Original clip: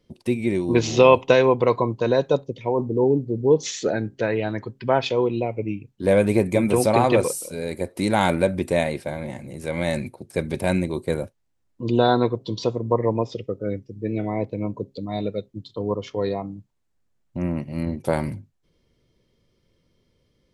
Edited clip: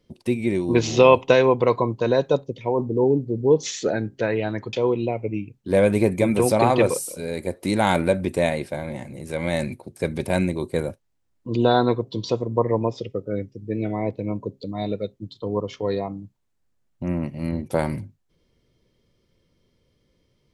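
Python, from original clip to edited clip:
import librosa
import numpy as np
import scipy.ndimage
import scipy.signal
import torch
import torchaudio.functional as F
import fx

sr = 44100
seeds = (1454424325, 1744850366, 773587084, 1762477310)

y = fx.edit(x, sr, fx.cut(start_s=4.73, length_s=0.34), tone=tone)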